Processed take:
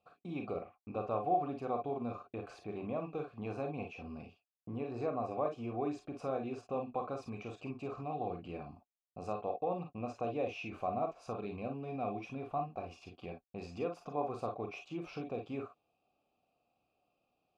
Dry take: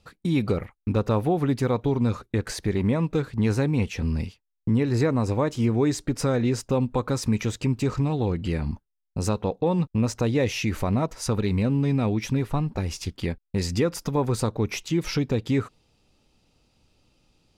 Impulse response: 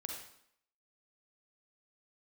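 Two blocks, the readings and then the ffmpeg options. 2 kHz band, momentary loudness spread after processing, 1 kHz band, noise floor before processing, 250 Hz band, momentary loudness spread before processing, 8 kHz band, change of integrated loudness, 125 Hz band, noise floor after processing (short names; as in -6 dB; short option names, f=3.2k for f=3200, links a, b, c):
-15.5 dB, 10 LU, -4.5 dB, -78 dBFS, -17.5 dB, 6 LU, under -25 dB, -14.5 dB, -22.5 dB, -82 dBFS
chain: -filter_complex "[0:a]asplit=3[a][b][c];[a]bandpass=f=730:t=q:w=8,volume=0dB[d];[b]bandpass=f=1.09k:t=q:w=8,volume=-6dB[e];[c]bandpass=f=2.44k:t=q:w=8,volume=-9dB[f];[d][e][f]amix=inputs=3:normalize=0,lowshelf=f=450:g=10[g];[1:a]atrim=start_sample=2205,atrim=end_sample=3087,asetrate=52920,aresample=44100[h];[g][h]afir=irnorm=-1:irlink=0,volume=2.5dB"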